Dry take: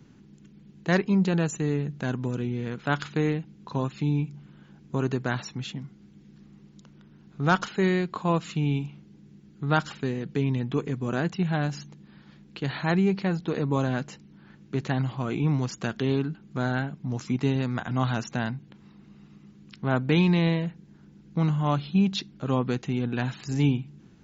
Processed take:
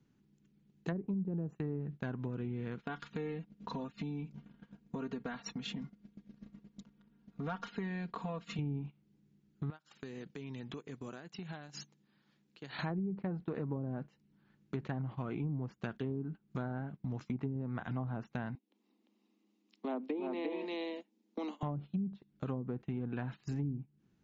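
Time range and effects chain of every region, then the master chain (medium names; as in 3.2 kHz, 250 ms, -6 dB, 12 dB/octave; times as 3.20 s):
2.82–8.59 s: low-pass 3.8 kHz 6 dB/octave + compression 2:1, threshold -38 dBFS + comb 4.3 ms, depth 97%
9.70–12.79 s: high-pass 250 Hz 6 dB/octave + treble shelf 5 kHz +6 dB + compression 20:1, threshold -39 dBFS
18.55–21.63 s: steep high-pass 220 Hz 96 dB/octave + peaking EQ 1.5 kHz -13.5 dB 0.6 oct + delay 348 ms -4 dB
whole clip: low-pass that closes with the level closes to 300 Hz, closed at -18.5 dBFS; compression 3:1, threshold -41 dBFS; gate -45 dBFS, range -20 dB; trim +2 dB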